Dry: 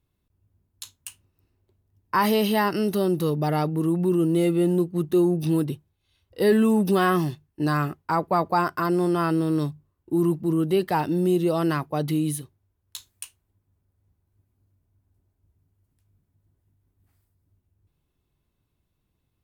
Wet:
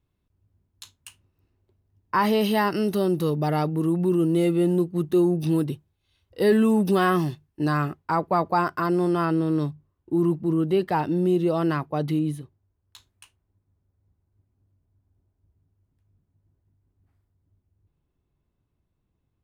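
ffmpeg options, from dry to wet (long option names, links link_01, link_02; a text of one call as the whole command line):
ffmpeg -i in.wav -af "asetnsamples=nb_out_samples=441:pad=0,asendcmd='2.41 lowpass f 8700;7.68 lowpass f 5200;9.25 lowpass f 3100;12.19 lowpass f 1400',lowpass=frequency=3900:poles=1" out.wav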